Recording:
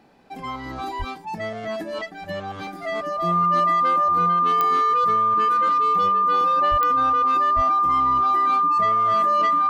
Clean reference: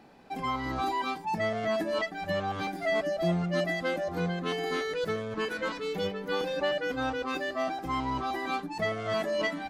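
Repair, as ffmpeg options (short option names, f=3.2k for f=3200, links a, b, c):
-filter_complex "[0:a]adeclick=t=4,bandreject=f=1.2k:w=30,asplit=3[a][b][c];[a]afade=t=out:st=0.98:d=0.02[d];[b]highpass=f=140:w=0.5412,highpass=f=140:w=1.3066,afade=t=in:st=0.98:d=0.02,afade=t=out:st=1.1:d=0.02[e];[c]afade=t=in:st=1.1:d=0.02[f];[d][e][f]amix=inputs=3:normalize=0,asplit=3[g][h][i];[g]afade=t=out:st=6.7:d=0.02[j];[h]highpass=f=140:w=0.5412,highpass=f=140:w=1.3066,afade=t=in:st=6.7:d=0.02,afade=t=out:st=6.82:d=0.02[k];[i]afade=t=in:st=6.82:d=0.02[l];[j][k][l]amix=inputs=3:normalize=0,asplit=3[m][n][o];[m]afade=t=out:st=7.55:d=0.02[p];[n]highpass=f=140:w=0.5412,highpass=f=140:w=1.3066,afade=t=in:st=7.55:d=0.02,afade=t=out:st=7.67:d=0.02[q];[o]afade=t=in:st=7.67:d=0.02[r];[p][q][r]amix=inputs=3:normalize=0"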